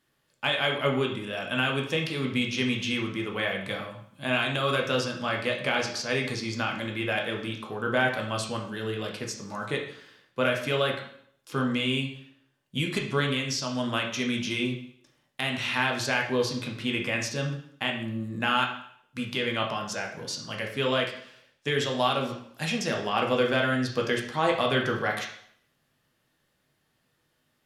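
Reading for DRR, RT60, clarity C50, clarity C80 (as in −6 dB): 0.5 dB, 0.65 s, 6.0 dB, 10.0 dB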